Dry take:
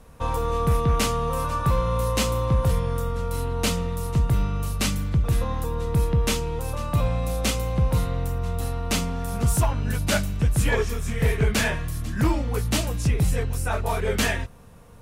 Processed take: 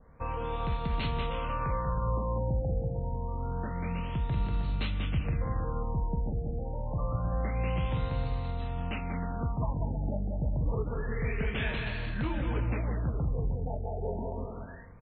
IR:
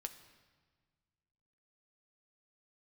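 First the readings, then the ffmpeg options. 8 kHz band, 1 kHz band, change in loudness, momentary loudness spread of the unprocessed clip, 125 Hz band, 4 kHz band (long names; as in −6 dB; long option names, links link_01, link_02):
below −40 dB, −8.0 dB, −8.5 dB, 6 LU, −8.0 dB, −14.0 dB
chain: -af "adynamicequalizer=threshold=0.00891:dfrequency=2600:dqfactor=1.4:tfrequency=2600:tqfactor=1.4:attack=5:release=100:ratio=0.375:range=2.5:mode=boostabove:tftype=bell,alimiter=limit=-17dB:level=0:latency=1:release=124,areverse,acompressor=mode=upward:threshold=-46dB:ratio=2.5,areverse,aecho=1:1:190|313.5|393.8|446|479.9:0.631|0.398|0.251|0.158|0.1,afftfilt=real='re*lt(b*sr/1024,870*pow(4500/870,0.5+0.5*sin(2*PI*0.27*pts/sr)))':imag='im*lt(b*sr/1024,870*pow(4500/870,0.5+0.5*sin(2*PI*0.27*pts/sr)))':win_size=1024:overlap=0.75,volume=-7.5dB"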